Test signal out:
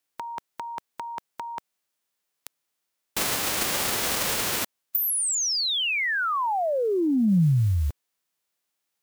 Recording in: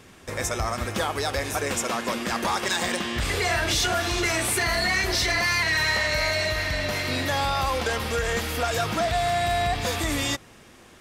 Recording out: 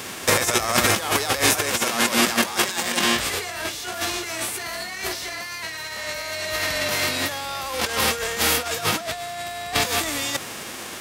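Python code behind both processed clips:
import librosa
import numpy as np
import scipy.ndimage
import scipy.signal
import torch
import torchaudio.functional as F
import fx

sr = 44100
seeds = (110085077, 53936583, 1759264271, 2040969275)

y = fx.envelope_flatten(x, sr, power=0.6)
y = fx.highpass(y, sr, hz=200.0, slope=6)
y = fx.over_compress(y, sr, threshold_db=-32.0, ratio=-0.5)
y = F.gain(torch.from_numpy(y), 9.0).numpy()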